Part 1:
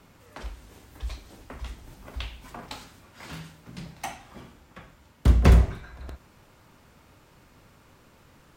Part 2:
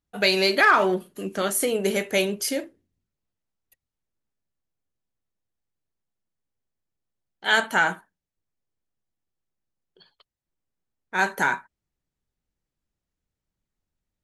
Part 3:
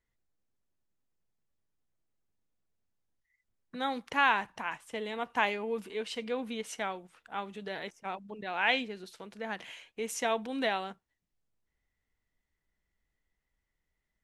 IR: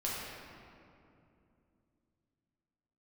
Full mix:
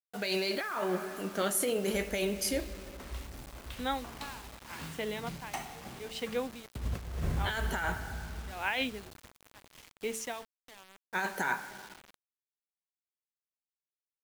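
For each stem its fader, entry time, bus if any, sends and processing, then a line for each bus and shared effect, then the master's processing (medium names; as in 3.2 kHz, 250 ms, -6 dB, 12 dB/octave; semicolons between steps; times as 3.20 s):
-9.0 dB, 1.50 s, send -9 dB, auto duck -10 dB, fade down 0.30 s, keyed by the second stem
-9.5 dB, 0.00 s, send -17 dB, none
-1.5 dB, 0.05 s, no send, de-hum 222.8 Hz, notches 3; logarithmic tremolo 0.8 Hz, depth 26 dB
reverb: on, RT60 2.7 s, pre-delay 6 ms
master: compressor with a negative ratio -32 dBFS, ratio -1; bit crusher 8-bit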